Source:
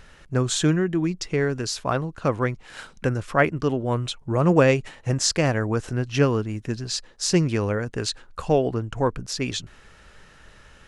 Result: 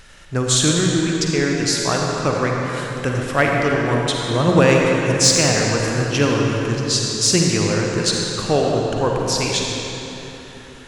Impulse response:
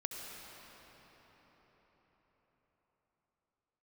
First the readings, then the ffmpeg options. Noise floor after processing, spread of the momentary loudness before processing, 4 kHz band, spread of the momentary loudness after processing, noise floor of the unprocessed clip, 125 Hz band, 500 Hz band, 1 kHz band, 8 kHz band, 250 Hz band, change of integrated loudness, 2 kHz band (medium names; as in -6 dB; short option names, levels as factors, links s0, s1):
-39 dBFS, 8 LU, +10.0 dB, 10 LU, -51 dBFS, +4.0 dB, +5.0 dB, +6.0 dB, +11.0 dB, +5.0 dB, +6.0 dB, +7.5 dB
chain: -filter_complex "[0:a]highshelf=f=2500:g=9,asplit=2[s0][s1];[s1]aeval=exprs='0.376*(abs(mod(val(0)/0.376+3,4)-2)-1)':c=same,volume=0.447[s2];[s0][s2]amix=inputs=2:normalize=0[s3];[1:a]atrim=start_sample=2205,asetrate=66150,aresample=44100[s4];[s3][s4]afir=irnorm=-1:irlink=0,volume=1.58"